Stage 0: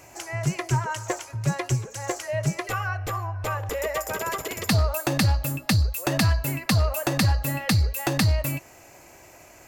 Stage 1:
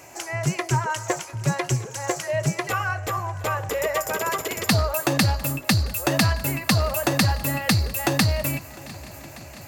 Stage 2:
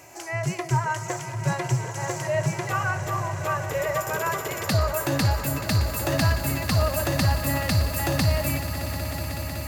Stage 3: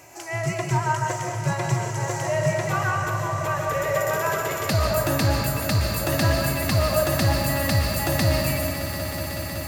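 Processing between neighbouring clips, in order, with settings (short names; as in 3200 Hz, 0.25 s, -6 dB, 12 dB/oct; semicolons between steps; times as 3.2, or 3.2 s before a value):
HPF 130 Hz 6 dB/oct; swung echo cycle 1.171 s, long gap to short 1.5:1, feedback 59%, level -21.5 dB; gain +3.5 dB
harmonic-percussive split percussive -8 dB; swelling echo 0.186 s, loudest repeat 5, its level -14.5 dB
reverb RT60 0.85 s, pre-delay 95 ms, DRR 2 dB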